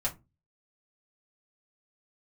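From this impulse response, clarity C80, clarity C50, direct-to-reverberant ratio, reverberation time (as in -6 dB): 26.0 dB, 16.5 dB, -4.5 dB, 0.25 s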